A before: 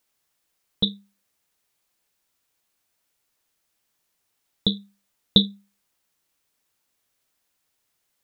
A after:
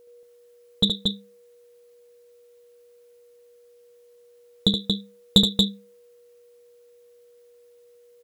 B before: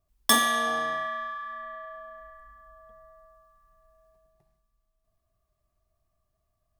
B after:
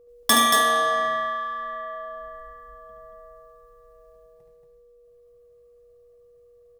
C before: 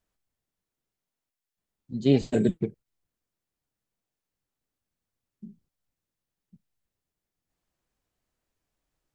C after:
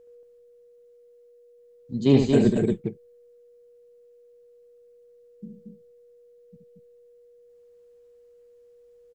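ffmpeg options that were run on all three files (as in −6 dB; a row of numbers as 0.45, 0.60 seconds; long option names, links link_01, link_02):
-af "acontrast=77,aeval=exprs='val(0)+0.00447*sin(2*PI*480*n/s)':channel_layout=same,aecho=1:1:72.89|230.3:0.501|0.631,volume=-4dB"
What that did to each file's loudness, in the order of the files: +1.0, +5.0, +4.0 LU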